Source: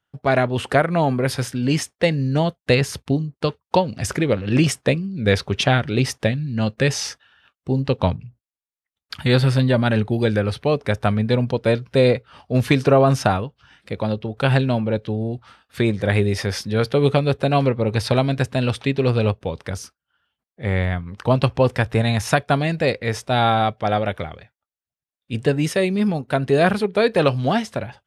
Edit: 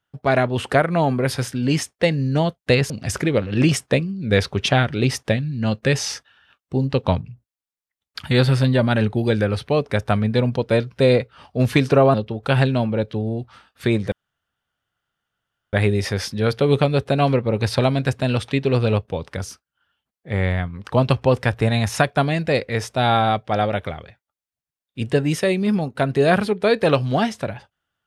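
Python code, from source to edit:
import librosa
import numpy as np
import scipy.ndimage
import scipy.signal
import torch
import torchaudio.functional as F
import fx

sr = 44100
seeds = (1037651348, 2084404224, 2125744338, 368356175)

y = fx.edit(x, sr, fx.cut(start_s=2.9, length_s=0.95),
    fx.cut(start_s=13.09, length_s=0.99),
    fx.insert_room_tone(at_s=16.06, length_s=1.61), tone=tone)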